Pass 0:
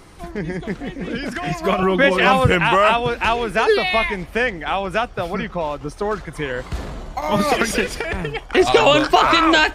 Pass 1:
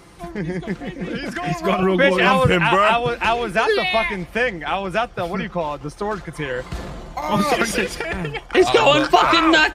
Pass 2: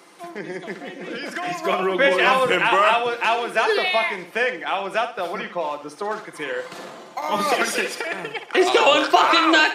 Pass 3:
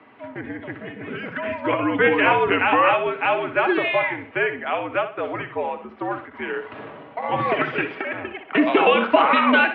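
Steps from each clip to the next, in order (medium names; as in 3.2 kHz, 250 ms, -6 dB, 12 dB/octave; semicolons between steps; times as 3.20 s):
high-pass 43 Hz; comb 5.8 ms, depth 33%; trim -1 dB
Bessel high-pass 350 Hz, order 4; flutter echo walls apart 10.6 m, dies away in 0.36 s; trim -1 dB
mistuned SSB -74 Hz 180–2900 Hz; endings held to a fixed fall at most 180 dB/s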